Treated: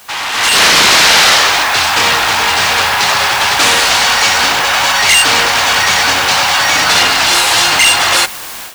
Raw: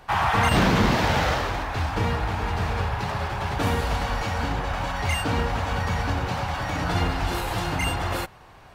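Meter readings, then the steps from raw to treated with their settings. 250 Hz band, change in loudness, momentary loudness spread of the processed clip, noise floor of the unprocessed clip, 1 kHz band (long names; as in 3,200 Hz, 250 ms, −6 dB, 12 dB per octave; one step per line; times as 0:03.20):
+1.0 dB, +16.5 dB, 5 LU, −49 dBFS, +13.0 dB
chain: wavefolder on the positive side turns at −22.5 dBFS
meter weighting curve ITU-R 468
in parallel at −4 dB: bit-depth reduction 6 bits, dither triangular
on the sum: soft clipping −15.5 dBFS, distortion −13 dB
automatic gain control gain up to 15.5 dB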